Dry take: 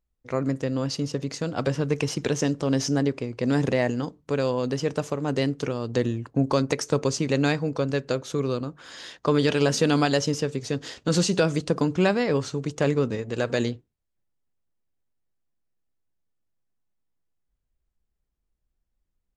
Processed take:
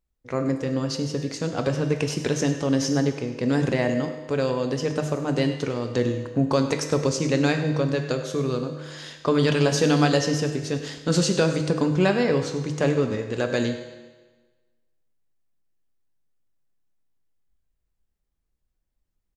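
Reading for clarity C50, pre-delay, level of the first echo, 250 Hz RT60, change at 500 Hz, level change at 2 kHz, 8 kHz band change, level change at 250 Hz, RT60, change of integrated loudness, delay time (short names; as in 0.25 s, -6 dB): 7.5 dB, 6 ms, -14.5 dB, 1.3 s, +1.0 dB, +1.5 dB, +1.0 dB, +1.5 dB, 1.3 s, +1.5 dB, 0.1 s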